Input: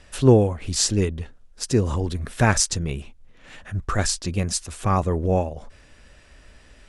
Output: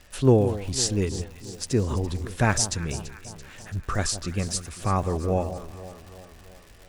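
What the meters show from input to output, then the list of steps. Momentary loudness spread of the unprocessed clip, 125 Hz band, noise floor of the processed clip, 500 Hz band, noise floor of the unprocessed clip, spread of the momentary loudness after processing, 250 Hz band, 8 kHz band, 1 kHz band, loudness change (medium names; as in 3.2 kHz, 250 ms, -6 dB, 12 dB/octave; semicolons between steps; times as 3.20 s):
15 LU, -3.0 dB, -50 dBFS, -3.0 dB, -52 dBFS, 20 LU, -3.0 dB, -3.5 dB, -3.0 dB, -3.5 dB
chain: echo whose repeats swap between lows and highs 168 ms, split 1.1 kHz, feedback 74%, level -12 dB; crackle 210 per s -35 dBFS; trim -3.5 dB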